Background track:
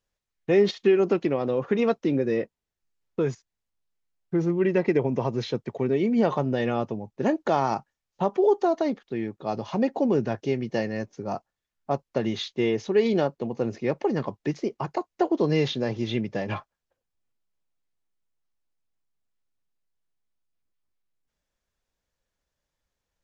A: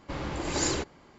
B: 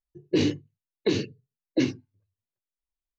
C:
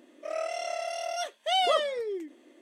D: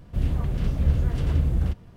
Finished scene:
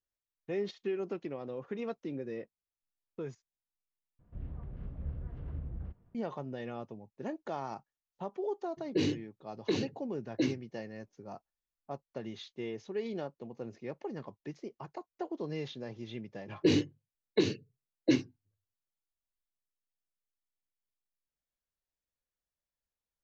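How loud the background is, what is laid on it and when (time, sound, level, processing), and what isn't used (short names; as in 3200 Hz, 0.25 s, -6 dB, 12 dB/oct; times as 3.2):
background track -15 dB
4.19 replace with D -18 dB + LPF 1600 Hz
8.62 add B -7 dB
16.31 add B -2 dB + upward expander, over -34 dBFS
not used: A, C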